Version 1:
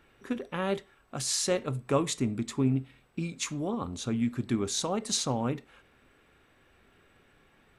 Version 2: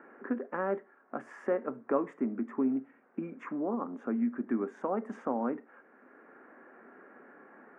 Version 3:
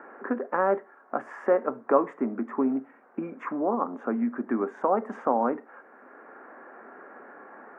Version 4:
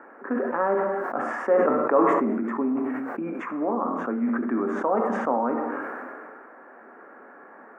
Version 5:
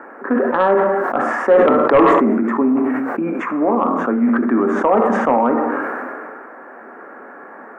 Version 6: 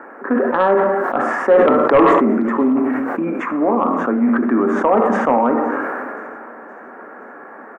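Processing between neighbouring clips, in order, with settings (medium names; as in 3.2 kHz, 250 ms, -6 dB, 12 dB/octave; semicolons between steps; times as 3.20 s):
elliptic band-pass 230–1700 Hz, stop band 40 dB; three bands compressed up and down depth 40%
peaking EQ 870 Hz +11 dB 2.4 oct
gated-style reverb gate 310 ms falling, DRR 6 dB; decay stretcher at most 23 dB/s; trim -1.5 dB
sine folder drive 4 dB, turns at -7 dBFS; trim +2 dB
feedback delay 520 ms, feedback 56%, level -22 dB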